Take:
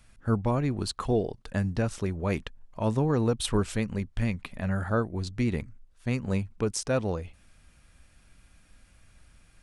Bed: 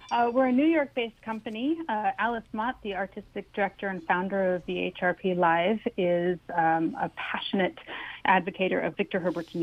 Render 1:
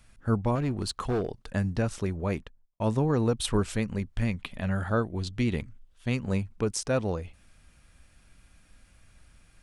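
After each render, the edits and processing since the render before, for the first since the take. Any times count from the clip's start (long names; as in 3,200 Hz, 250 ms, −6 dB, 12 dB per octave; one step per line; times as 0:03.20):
0:00.55–0:01.46: gain into a clipping stage and back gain 23.5 dB
0:02.16–0:02.80: fade out and dull
0:04.38–0:06.23: parametric band 3,200 Hz +8 dB 0.45 octaves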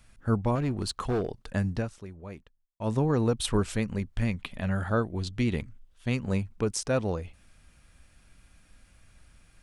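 0:01.74–0:02.94: duck −12.5 dB, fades 0.18 s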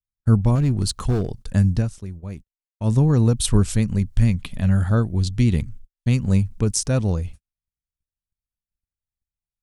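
noise gate −46 dBFS, range −49 dB
bass and treble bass +13 dB, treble +11 dB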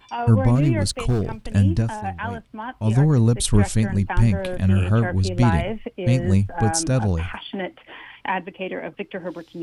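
mix in bed −2.5 dB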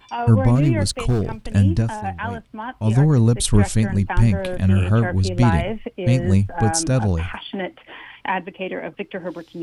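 level +1.5 dB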